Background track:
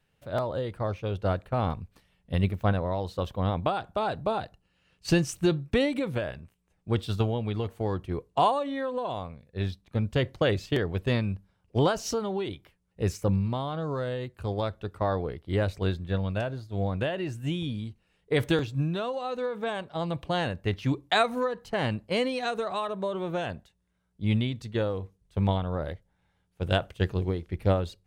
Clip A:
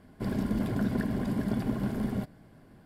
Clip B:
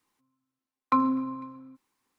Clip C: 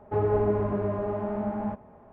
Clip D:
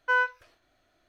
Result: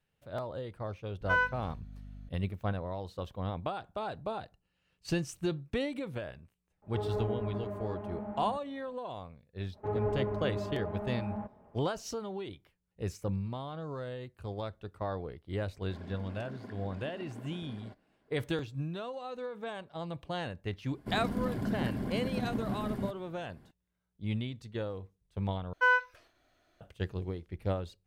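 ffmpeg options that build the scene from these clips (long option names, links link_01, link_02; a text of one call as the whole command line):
ffmpeg -i bed.wav -i cue0.wav -i cue1.wav -i cue2.wav -i cue3.wav -filter_complex "[4:a]asplit=2[link_01][link_02];[3:a]asplit=2[link_03][link_04];[1:a]asplit=2[link_05][link_06];[0:a]volume=-8.5dB[link_07];[link_01]aeval=exprs='val(0)+0.00891*(sin(2*PI*50*n/s)+sin(2*PI*2*50*n/s)/2+sin(2*PI*3*50*n/s)/3+sin(2*PI*4*50*n/s)/4+sin(2*PI*5*50*n/s)/5)':channel_layout=same[link_08];[link_05]highpass=310,lowpass=4900[link_09];[link_07]asplit=2[link_10][link_11];[link_10]atrim=end=25.734[link_12];[link_02]atrim=end=1.08,asetpts=PTS-STARTPTS,volume=-1dB[link_13];[link_11]atrim=start=26.806[link_14];[link_08]atrim=end=1.08,asetpts=PTS-STARTPTS,volume=-4dB,afade=type=in:duration=0.004:curve=hsin,afade=type=out:start_time=1.076:duration=0.004:curve=hsin,adelay=1210[link_15];[link_03]atrim=end=2.12,asetpts=PTS-STARTPTS,volume=-10.5dB,afade=type=in:duration=0.004:curve=hsin,afade=type=out:start_time=2.116:duration=0.004:curve=hsin,adelay=300762S[link_16];[link_04]atrim=end=2.12,asetpts=PTS-STARTPTS,volume=-8dB,afade=type=in:duration=0.05,afade=type=out:start_time=2.07:duration=0.05,adelay=9720[link_17];[link_09]atrim=end=2.85,asetpts=PTS-STARTPTS,volume=-12dB,afade=type=in:duration=0.004:curve=hsin,afade=type=out:start_time=2.846:duration=0.004:curve=hsin,adelay=15690[link_18];[link_06]atrim=end=2.85,asetpts=PTS-STARTPTS,volume=-4.5dB,afade=type=in:duration=0.004:curve=hsin,afade=type=out:start_time=2.846:duration=0.004:curve=hsin,adelay=20860[link_19];[link_12][link_13]acrossfade=duration=0.004:curve1=hsin:curve2=hsin[link_20];[link_20][link_14]acrossfade=duration=0.004:curve1=hsin:curve2=hsin[link_21];[link_21][link_15][link_16][link_17][link_18][link_19]amix=inputs=6:normalize=0" out.wav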